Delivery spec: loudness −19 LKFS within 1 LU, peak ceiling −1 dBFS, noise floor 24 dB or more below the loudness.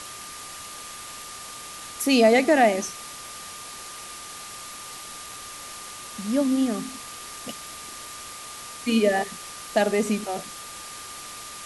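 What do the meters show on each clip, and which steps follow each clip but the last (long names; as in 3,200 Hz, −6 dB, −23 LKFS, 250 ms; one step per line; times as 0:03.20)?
interfering tone 1,200 Hz; level of the tone −43 dBFS; background noise floor −40 dBFS; target noise floor −51 dBFS; integrated loudness −27.0 LKFS; sample peak −7.0 dBFS; target loudness −19.0 LKFS
→ notch filter 1,200 Hz, Q 30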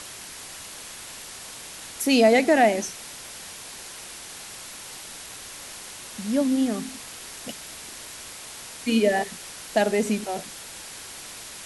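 interfering tone none found; background noise floor −41 dBFS; target noise floor −48 dBFS
→ noise reduction from a noise print 7 dB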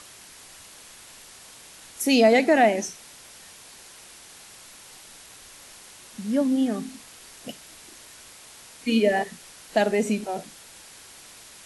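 background noise floor −48 dBFS; integrated loudness −23.0 LKFS; sample peak −7.0 dBFS; target loudness −19.0 LKFS
→ level +4 dB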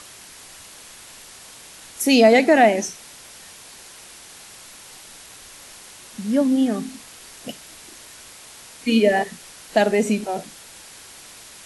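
integrated loudness −19.0 LKFS; sample peak −3.0 dBFS; background noise floor −44 dBFS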